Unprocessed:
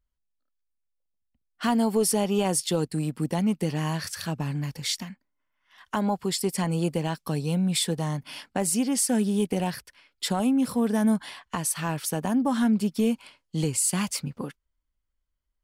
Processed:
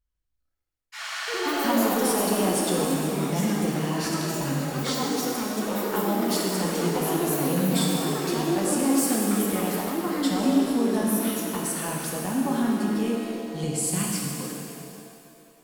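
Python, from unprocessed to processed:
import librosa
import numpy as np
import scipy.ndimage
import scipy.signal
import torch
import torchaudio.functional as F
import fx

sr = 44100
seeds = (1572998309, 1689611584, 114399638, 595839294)

y = fx.spec_repair(x, sr, seeds[0], start_s=1.02, length_s=0.56, low_hz=510.0, high_hz=8900.0, source='after')
y = fx.echo_pitch(y, sr, ms=152, semitones=4, count=3, db_per_echo=-3.0)
y = fx.rev_shimmer(y, sr, seeds[1], rt60_s=2.5, semitones=7, shimmer_db=-8, drr_db=-2.0)
y = y * 10.0 ** (-5.0 / 20.0)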